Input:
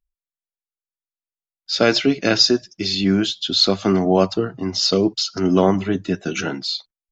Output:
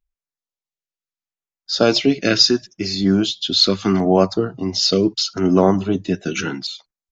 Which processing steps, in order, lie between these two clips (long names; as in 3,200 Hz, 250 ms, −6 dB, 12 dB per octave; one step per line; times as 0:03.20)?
downsampling to 16,000 Hz
auto-filter notch saw down 0.75 Hz 450–5,200 Hz
level +1.5 dB